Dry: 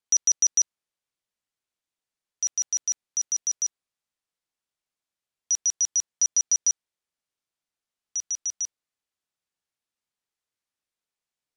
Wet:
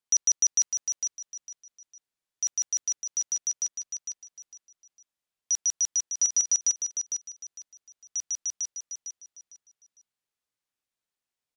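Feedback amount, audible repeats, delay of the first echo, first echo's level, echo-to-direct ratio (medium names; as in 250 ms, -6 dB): 28%, 3, 454 ms, -7.0 dB, -6.5 dB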